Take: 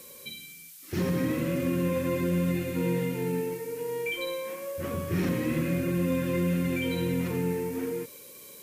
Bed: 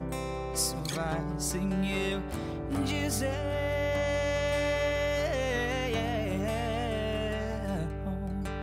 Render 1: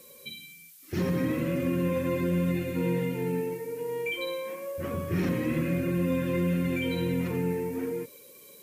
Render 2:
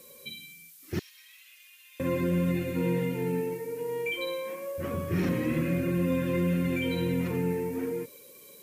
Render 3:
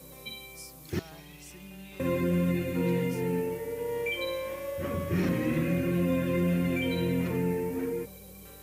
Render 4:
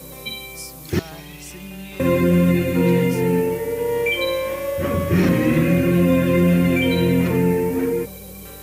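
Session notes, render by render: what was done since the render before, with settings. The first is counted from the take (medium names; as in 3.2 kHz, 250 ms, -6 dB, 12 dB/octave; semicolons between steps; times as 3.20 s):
noise reduction 6 dB, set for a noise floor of -48 dBFS
0.99–2.00 s: ladder high-pass 2.6 kHz, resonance 30%
add bed -17 dB
trim +11 dB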